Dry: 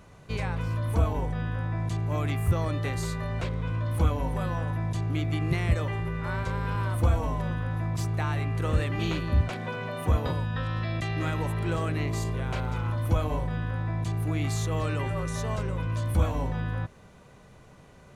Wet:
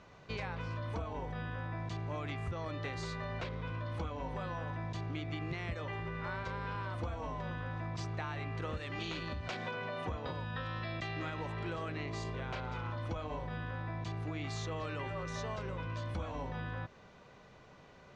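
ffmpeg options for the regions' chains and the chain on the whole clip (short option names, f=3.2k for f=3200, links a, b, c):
-filter_complex "[0:a]asettb=1/sr,asplit=3[a][b][c];[a]atrim=end=8.774[d];[b]atrim=start=8.77:end=9.71,asetpts=PTS-STARTPTS,afade=t=in:d=0.004:c=qsin,afade=t=out:st=0.936:d=0.004:c=qsin,acompressor=threshold=-28dB:ratio=3:attack=3.2:release=140:knee=1:detection=peak,highshelf=f=4.5k:g=10.5[e];[c]atrim=start=9.706[f];[d][e]acrossfade=d=0.004:c1=hsin:c2=qsin[g];[g][f]acrossfade=d=0.004:c1=qsin:c2=hsin,lowpass=f=5.7k:w=0.5412,lowpass=f=5.7k:w=1.3066,lowshelf=f=230:g=-9,acompressor=threshold=-34dB:ratio=6,volume=-1.5dB"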